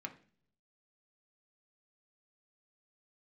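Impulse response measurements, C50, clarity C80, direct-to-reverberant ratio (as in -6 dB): 14.0 dB, 18.5 dB, 3.5 dB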